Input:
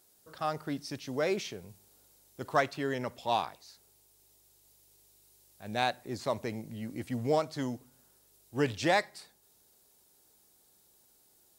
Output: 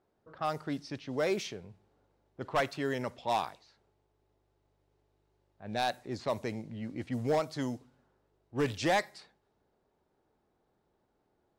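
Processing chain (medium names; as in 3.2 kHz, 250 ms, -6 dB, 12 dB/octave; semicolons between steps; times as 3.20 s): hard clipper -22.5 dBFS, distortion -14 dB; level-controlled noise filter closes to 1.3 kHz, open at -28.5 dBFS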